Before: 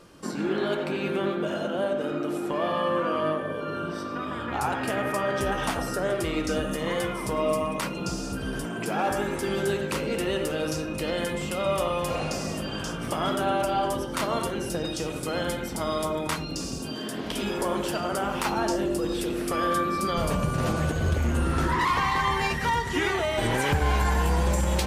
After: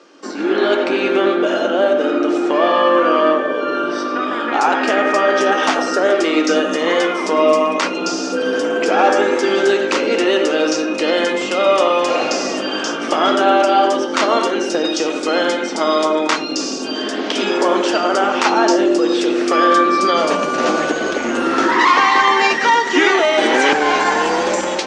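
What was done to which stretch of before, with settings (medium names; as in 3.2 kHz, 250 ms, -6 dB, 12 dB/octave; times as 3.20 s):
8.32–9.40 s: whistle 500 Hz -30 dBFS
whole clip: band-stop 1 kHz, Q 16; level rider gain up to 7 dB; elliptic band-pass 280–6400 Hz, stop band 40 dB; trim +6.5 dB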